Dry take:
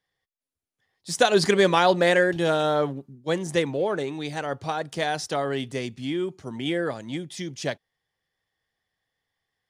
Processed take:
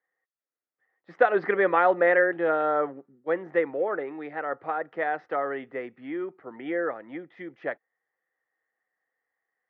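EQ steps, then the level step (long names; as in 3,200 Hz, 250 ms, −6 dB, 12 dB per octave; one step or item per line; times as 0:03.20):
loudspeaker in its box 300–2,100 Hz, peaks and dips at 320 Hz +5 dB, 500 Hz +7 dB, 750 Hz +5 dB, 1,300 Hz +9 dB, 1,900 Hz +9 dB
−6.5 dB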